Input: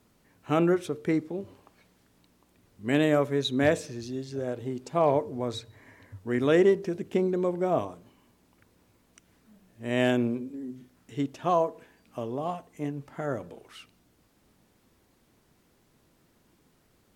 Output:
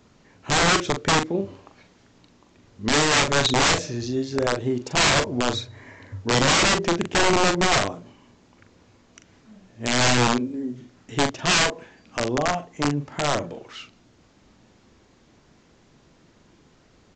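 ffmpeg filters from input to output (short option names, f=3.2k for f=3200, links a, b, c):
-filter_complex "[0:a]aresample=16000,aeval=exprs='(mod(13.3*val(0)+1,2)-1)/13.3':c=same,aresample=44100,asplit=2[a][b];[b]adelay=41,volume=-8dB[c];[a][c]amix=inputs=2:normalize=0,volume=8.5dB"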